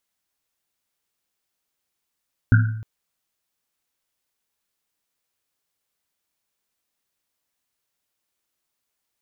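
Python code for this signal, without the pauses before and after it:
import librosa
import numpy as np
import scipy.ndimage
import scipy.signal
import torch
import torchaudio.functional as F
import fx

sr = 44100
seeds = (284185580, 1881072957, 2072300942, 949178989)

y = fx.risset_drum(sr, seeds[0], length_s=0.31, hz=110.0, decay_s=0.84, noise_hz=1500.0, noise_width_hz=180.0, noise_pct=20)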